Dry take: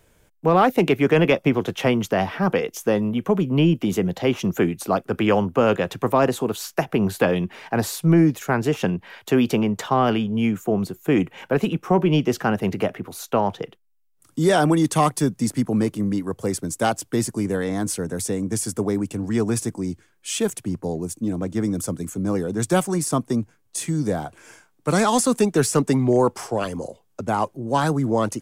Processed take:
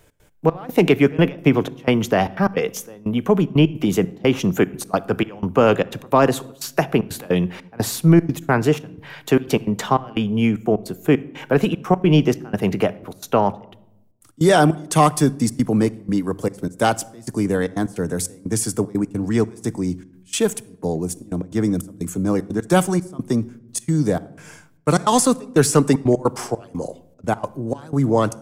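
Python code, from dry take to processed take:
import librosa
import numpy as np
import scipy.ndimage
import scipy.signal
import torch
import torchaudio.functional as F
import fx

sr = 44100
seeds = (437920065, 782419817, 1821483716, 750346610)

y = fx.step_gate(x, sr, bpm=152, pattern='x.xxx..xxxx.', floor_db=-24.0, edge_ms=4.5)
y = fx.room_shoebox(y, sr, seeds[0], volume_m3=2600.0, walls='furnished', distance_m=0.42)
y = F.gain(torch.from_numpy(y), 3.5).numpy()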